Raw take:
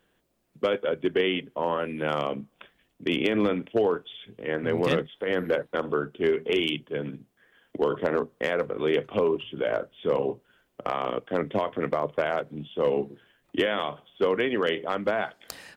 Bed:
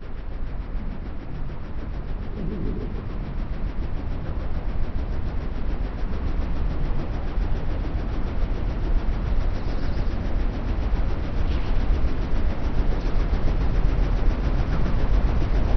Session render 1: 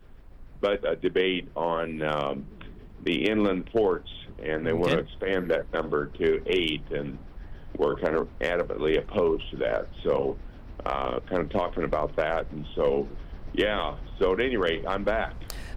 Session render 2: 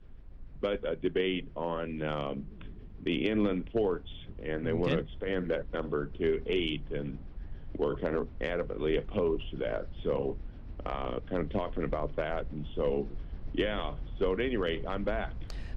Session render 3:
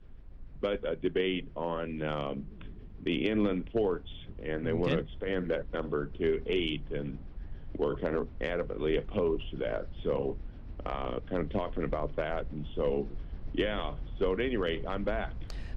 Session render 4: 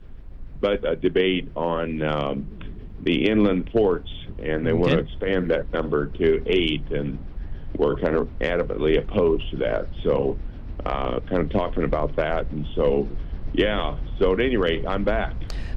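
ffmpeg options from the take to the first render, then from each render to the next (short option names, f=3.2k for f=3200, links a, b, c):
-filter_complex "[1:a]volume=-17.5dB[a];[0:a][a]amix=inputs=2:normalize=0"
-af "lowpass=3.7k,equalizer=f=1.1k:w=0.33:g=-8.5"
-af anull
-af "volume=9.5dB"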